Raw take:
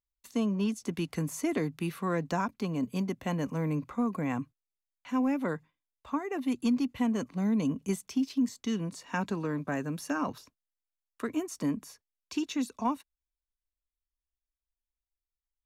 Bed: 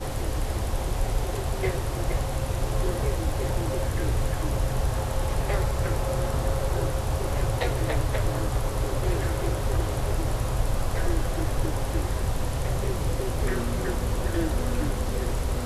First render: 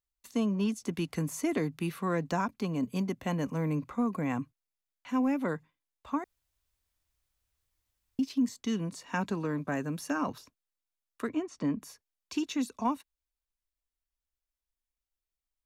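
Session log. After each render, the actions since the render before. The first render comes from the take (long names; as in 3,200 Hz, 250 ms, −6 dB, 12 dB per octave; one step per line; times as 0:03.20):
0:06.24–0:08.19: fill with room tone
0:11.29–0:11.82: high-frequency loss of the air 130 metres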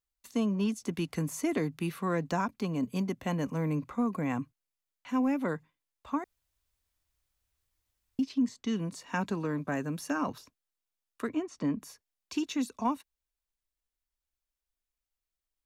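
0:08.23–0:08.76: high-frequency loss of the air 58 metres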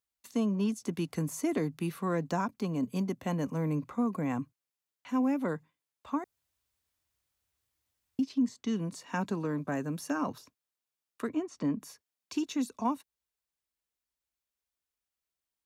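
dynamic equaliser 2,400 Hz, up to −4 dB, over −50 dBFS, Q 0.78
high-pass filter 84 Hz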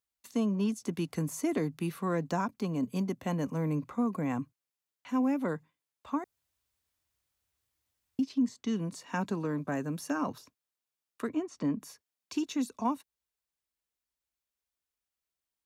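no processing that can be heard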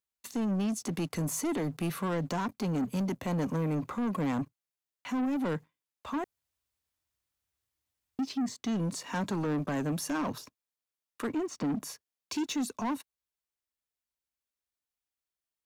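brickwall limiter −26 dBFS, peak gain reduction 7 dB
leveller curve on the samples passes 2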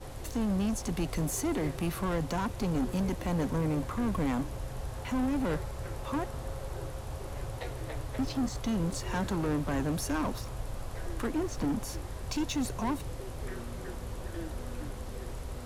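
mix in bed −12.5 dB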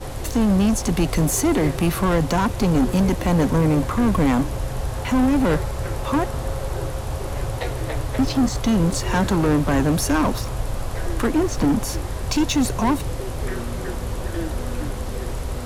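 level +12 dB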